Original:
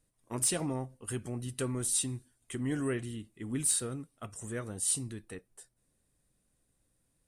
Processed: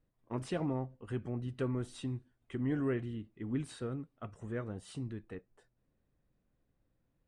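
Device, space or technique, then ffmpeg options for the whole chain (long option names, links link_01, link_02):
phone in a pocket: -af "lowpass=3300,highshelf=frequency=2200:gain=-9"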